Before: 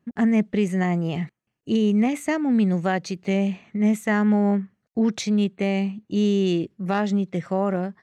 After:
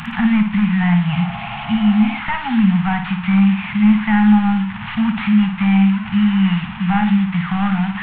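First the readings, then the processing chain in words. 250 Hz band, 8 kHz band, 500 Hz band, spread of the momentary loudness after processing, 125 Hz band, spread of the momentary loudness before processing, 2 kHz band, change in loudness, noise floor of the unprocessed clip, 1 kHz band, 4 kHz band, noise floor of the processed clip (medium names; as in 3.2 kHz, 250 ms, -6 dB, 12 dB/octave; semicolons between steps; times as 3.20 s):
+7.5 dB, under -25 dB, under -15 dB, 7 LU, +9.0 dB, 6 LU, +8.5 dB, +7.0 dB, -77 dBFS, +7.5 dB, +6.5 dB, -29 dBFS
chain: one-bit delta coder 16 kbps, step -33 dBFS; elliptic band-stop 210–830 Hz, stop band 40 dB; bass shelf 460 Hz -3.5 dB; in parallel at -2 dB: compression, threshold -33 dBFS, peak gain reduction 12 dB; on the sum: flutter echo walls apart 9.7 m, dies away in 0.43 s; spectral replace 1.19–2.15 s, 360–2100 Hz before; trim +9 dB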